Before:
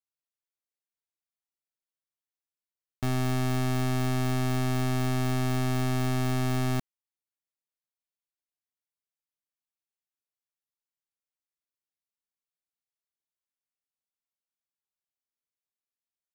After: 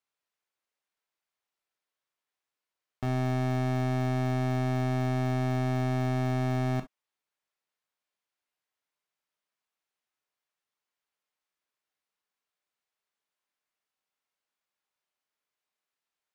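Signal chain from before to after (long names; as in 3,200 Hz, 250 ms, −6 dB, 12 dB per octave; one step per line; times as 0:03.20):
mid-hump overdrive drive 16 dB, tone 1,900 Hz, clips at −26 dBFS
reverb whose tail is shaped and stops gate 80 ms flat, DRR 8 dB
level +1.5 dB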